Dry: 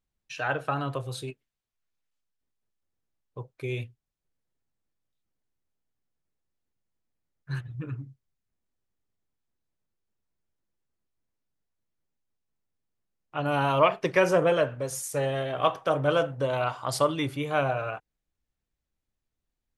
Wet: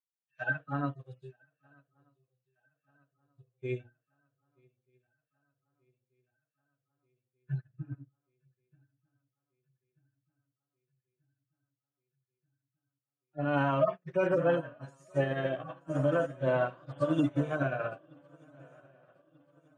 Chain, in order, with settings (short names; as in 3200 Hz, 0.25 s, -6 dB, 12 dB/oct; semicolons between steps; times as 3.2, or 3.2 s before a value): median-filter separation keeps harmonic; tilt shelf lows +5.5 dB, about 890 Hz; notches 60/120/180/240/300/360/420/480/540/600 Hz; limiter -20.5 dBFS, peak gain reduction 10.5 dB; speaker cabinet 180–8700 Hz, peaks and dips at 430 Hz -8 dB, 820 Hz -6 dB, 1700 Hz +8 dB; swung echo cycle 1.236 s, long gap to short 3:1, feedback 72%, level -14 dB; upward expander 2.5:1, over -49 dBFS; gain +6.5 dB